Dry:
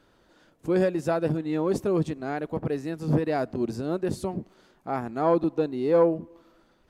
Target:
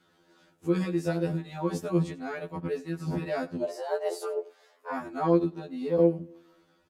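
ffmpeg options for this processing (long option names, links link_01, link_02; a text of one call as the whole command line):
ffmpeg -i in.wav -filter_complex "[0:a]asettb=1/sr,asplit=3[link_01][link_02][link_03];[link_01]atrim=end=2.514[link_04];[link_02]atrim=start=2.51:end=2.94,asetpts=PTS-STARTPTS,afade=type=in:duration=0.004:curve=qsin,afade=type=out:start_time=0.426:duration=0.004:curve=qsin,agate=range=-11dB:threshold=-30dB:ratio=16:detection=peak[link_05];[link_03]atrim=start=2.936[link_06];[link_04][link_05]acrossfade=duration=0.004:curve1=hsin:curve2=qsin[link_07];[link_07][link_06]acrossfade=duration=0.004:curve1=qsin:curve2=hsin,highpass=frequency=100:poles=1,equalizer=frequency=540:width_type=o:width=2.4:gain=-3,aecho=1:1:6.3:0.38,asplit=3[link_08][link_09][link_10];[link_08]afade=type=out:start_time=3.62:duration=0.02[link_11];[link_09]afreqshift=250,afade=type=in:start_time=3.62:duration=0.02,afade=type=out:start_time=4.92:duration=0.02[link_12];[link_10]afade=type=in:start_time=4.92:duration=0.02[link_13];[link_11][link_12][link_13]amix=inputs=3:normalize=0,asettb=1/sr,asplit=3[link_14][link_15][link_16];[link_14]atrim=end=5.444[link_17];[link_15]atrim=start=5.44:end=5.99,asetpts=PTS-STARTPTS,afade=type=in:duration=0.004:curve=qsin,afade=type=out:start_time=0.546:duration=0.004:curve=qsin,acrossover=split=160[link_18][link_19];[link_19]acompressor=threshold=-29dB:ratio=2.5[link_20];[link_18][link_20]amix=inputs=2:normalize=0[link_21];[link_16]atrim=start=5.986[link_22];[link_17][link_21]acrossfade=duration=0.004:curve1=hsin:curve2=qsin[link_23];[link_23][link_22]acrossfade=duration=0.004:curve1=qsin:curve2=hsin,aecho=1:1:91:0.106,afftfilt=real='re*2*eq(mod(b,4),0)':imag='im*2*eq(mod(b,4),0)':win_size=2048:overlap=0.75,volume=1dB" out.wav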